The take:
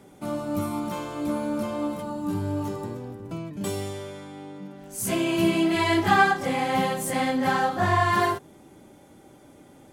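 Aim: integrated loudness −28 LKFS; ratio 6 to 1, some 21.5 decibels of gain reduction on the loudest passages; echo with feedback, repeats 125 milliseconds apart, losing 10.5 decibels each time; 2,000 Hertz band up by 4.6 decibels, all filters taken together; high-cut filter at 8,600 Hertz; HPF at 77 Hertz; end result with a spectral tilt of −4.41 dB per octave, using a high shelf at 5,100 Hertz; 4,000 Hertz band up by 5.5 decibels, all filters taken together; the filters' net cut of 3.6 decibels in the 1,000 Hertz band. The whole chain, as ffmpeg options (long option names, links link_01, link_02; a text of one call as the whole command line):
ffmpeg -i in.wav -af "highpass=77,lowpass=8600,equalizer=frequency=1000:width_type=o:gain=-6.5,equalizer=frequency=2000:width_type=o:gain=7.5,equalizer=frequency=4000:width_type=o:gain=7,highshelf=frequency=5100:gain=-5.5,acompressor=threshold=-38dB:ratio=6,aecho=1:1:125|250|375:0.299|0.0896|0.0269,volume=11.5dB" out.wav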